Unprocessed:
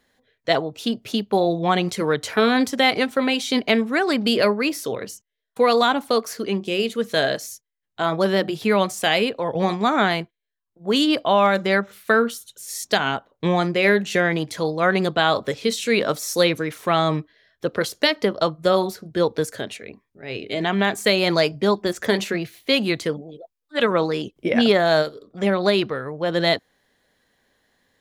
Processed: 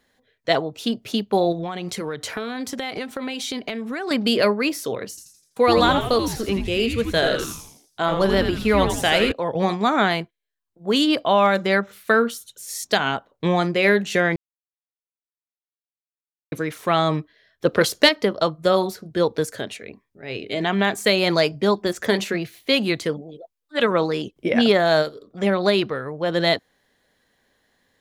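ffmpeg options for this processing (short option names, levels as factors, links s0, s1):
-filter_complex "[0:a]asettb=1/sr,asplit=3[s0][s1][s2];[s0]atrim=end=1.524[s3];[s1]atrim=start=1.52:end=4.11,asetpts=PTS-STARTPTS,afade=t=in:d=0.004:c=qsin,afade=t=out:st=2.586:d=0.004:c=qsin,acompressor=threshold=0.0631:ratio=12:attack=3.2:release=140:knee=1:detection=peak[s4];[s2]atrim=start=4.106[s5];[s3][s4]acrossfade=d=0.004:c1=hsin:c2=qsin[s6];[s6][s5]acrossfade=d=0.004:c1=qsin:c2=hsin,asettb=1/sr,asplit=3[s7][s8][s9];[s7]atrim=end=5.094[s10];[s8]atrim=start=5.09:end=9.32,asetpts=PTS-STARTPTS,afade=t=in:d=0.004:c=qsin,afade=t=out:st=4.226:d=0.004:c=qsin,asplit=7[s11][s12][s13][s14][s15][s16][s17];[s12]adelay=83,afreqshift=-150,volume=0.501[s18];[s13]adelay=166,afreqshift=-300,volume=0.232[s19];[s14]adelay=249,afreqshift=-450,volume=0.106[s20];[s15]adelay=332,afreqshift=-600,volume=0.049[s21];[s16]adelay=415,afreqshift=-750,volume=0.0224[s22];[s17]adelay=498,afreqshift=-900,volume=0.0104[s23];[s11][s18][s19][s20][s21][s22][s23]amix=inputs=7:normalize=0,atrim=end_sample=186543[s24];[s9]atrim=start=9.316[s25];[s10][s24]acrossfade=d=0.004:c1=hsin:c2=qsin[s26];[s26][s25]acrossfade=d=0.004:c1=qsin:c2=hsin,asettb=1/sr,asplit=3[s27][s28][s29];[s27]atrim=end=17.654[s30];[s28]atrim=start=17.65:end=18.09,asetpts=PTS-STARTPTS,afade=t=in:d=0.004:c=qsin,afade=t=out:st=0.436:d=0.004:c=qsin,acontrast=40[s31];[s29]atrim=start=18.086[s32];[s30][s31]acrossfade=d=0.004:c1=hsin:c2=qsin[s33];[s33][s32]acrossfade=d=0.004:c1=qsin:c2=hsin,asplit=3[s34][s35][s36];[s34]atrim=end=14.36,asetpts=PTS-STARTPTS,afade=t=out:st=14.356:d=0.004:c=hsin[s37];[s35]atrim=start=14.36:end=16.52,asetpts=PTS-STARTPTS,volume=0[s38];[s36]atrim=start=16.52,asetpts=PTS-STARTPTS,afade=t=in:d=0.004:c=hsin[s39];[s37][s38][s39]concat=n=3:v=0:a=1"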